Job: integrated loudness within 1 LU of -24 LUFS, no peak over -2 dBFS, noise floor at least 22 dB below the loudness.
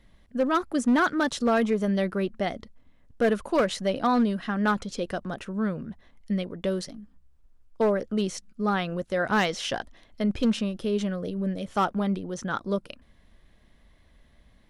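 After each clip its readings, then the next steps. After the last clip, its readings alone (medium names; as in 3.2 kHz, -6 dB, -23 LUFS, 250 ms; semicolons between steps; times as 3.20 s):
clipped samples 0.8%; clipping level -16.5 dBFS; loudness -27.0 LUFS; peak level -16.5 dBFS; loudness target -24.0 LUFS
-> clip repair -16.5 dBFS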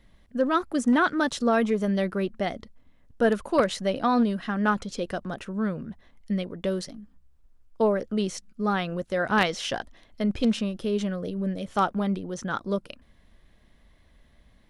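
clipped samples 0.0%; loudness -27.0 LUFS; peak level -7.5 dBFS; loudness target -24.0 LUFS
-> trim +3 dB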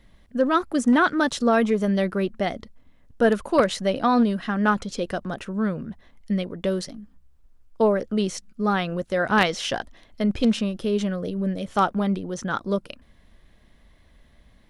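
loudness -24.0 LUFS; peak level -4.5 dBFS; noise floor -56 dBFS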